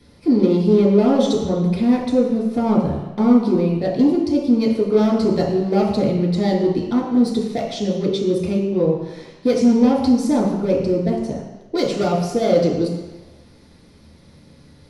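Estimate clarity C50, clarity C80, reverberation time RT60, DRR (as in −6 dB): 2.5 dB, 5.5 dB, 1.1 s, −5.5 dB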